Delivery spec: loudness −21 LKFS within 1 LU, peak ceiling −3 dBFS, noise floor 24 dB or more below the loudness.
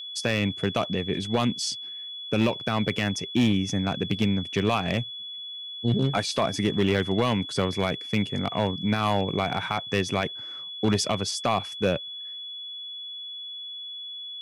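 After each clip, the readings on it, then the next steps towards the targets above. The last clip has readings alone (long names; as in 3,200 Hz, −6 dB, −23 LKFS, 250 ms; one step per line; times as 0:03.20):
share of clipped samples 0.8%; peaks flattened at −15.0 dBFS; interfering tone 3,400 Hz; level of the tone −35 dBFS; integrated loudness −27.0 LKFS; sample peak −15.0 dBFS; target loudness −21.0 LKFS
→ clipped peaks rebuilt −15 dBFS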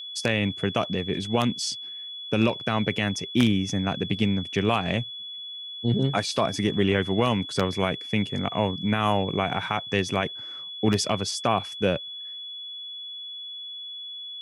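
share of clipped samples 0.0%; interfering tone 3,400 Hz; level of the tone −35 dBFS
→ notch filter 3,400 Hz, Q 30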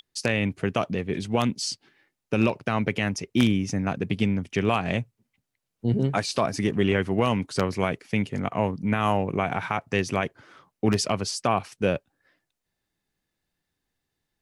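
interfering tone none found; integrated loudness −26.0 LKFS; sample peak −6.0 dBFS; target loudness −21.0 LKFS
→ level +5 dB
brickwall limiter −3 dBFS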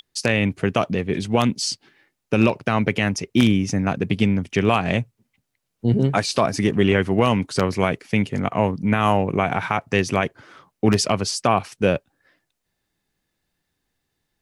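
integrated loudness −21.0 LKFS; sample peak −3.0 dBFS; background noise floor −78 dBFS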